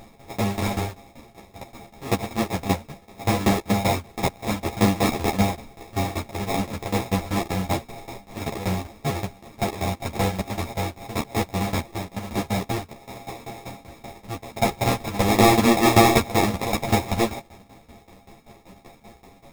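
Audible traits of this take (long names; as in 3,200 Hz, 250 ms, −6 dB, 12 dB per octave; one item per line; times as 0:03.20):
a buzz of ramps at a fixed pitch in blocks of 64 samples
tremolo saw down 5.2 Hz, depth 90%
aliases and images of a low sample rate 1,500 Hz, jitter 0%
a shimmering, thickened sound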